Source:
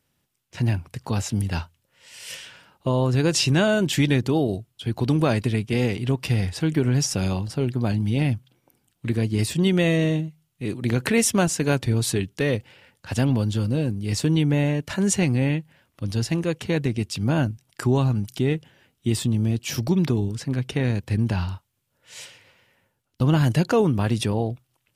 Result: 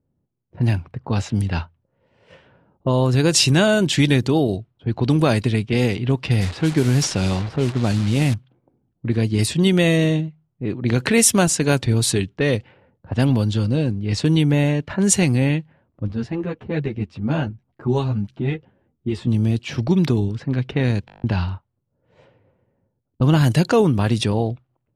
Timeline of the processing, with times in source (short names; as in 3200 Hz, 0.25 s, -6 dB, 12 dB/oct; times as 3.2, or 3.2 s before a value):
6.41–8.34 delta modulation 64 kbps, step -30 dBFS
16.08–19.27 ensemble effect
21.06 stutter in place 0.02 s, 9 plays
whole clip: dynamic EQ 9700 Hz, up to +5 dB, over -43 dBFS, Q 0.87; low-pass opened by the level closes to 460 Hz, open at -16.5 dBFS; bell 4000 Hz +3 dB 0.36 oct; gain +3.5 dB